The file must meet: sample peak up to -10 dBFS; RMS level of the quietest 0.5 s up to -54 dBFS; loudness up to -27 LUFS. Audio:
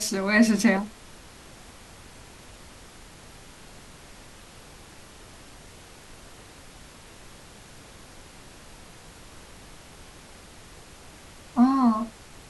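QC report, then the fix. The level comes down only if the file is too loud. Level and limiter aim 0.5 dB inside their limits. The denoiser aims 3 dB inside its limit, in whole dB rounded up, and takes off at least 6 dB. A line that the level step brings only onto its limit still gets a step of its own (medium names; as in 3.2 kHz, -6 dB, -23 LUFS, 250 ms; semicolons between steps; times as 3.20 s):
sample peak -7.5 dBFS: fail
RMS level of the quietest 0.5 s -47 dBFS: fail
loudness -22.5 LUFS: fail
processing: noise reduction 6 dB, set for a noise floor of -47 dBFS; trim -5 dB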